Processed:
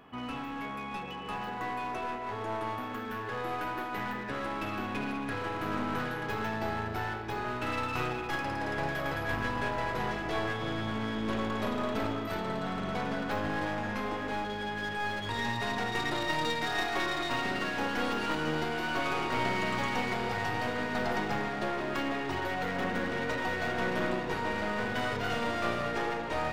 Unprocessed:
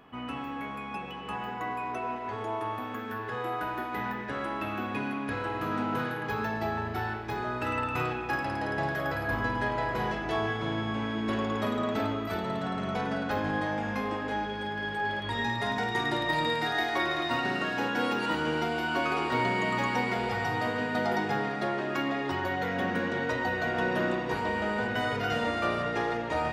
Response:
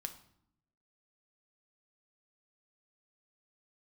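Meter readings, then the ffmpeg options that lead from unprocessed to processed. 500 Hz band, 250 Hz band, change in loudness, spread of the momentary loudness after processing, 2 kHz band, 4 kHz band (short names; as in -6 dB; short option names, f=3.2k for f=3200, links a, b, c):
-2.5 dB, -2.5 dB, -2.5 dB, 5 LU, -2.5 dB, -1.0 dB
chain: -af "aeval=exprs='clip(val(0),-1,0.0168)':c=same"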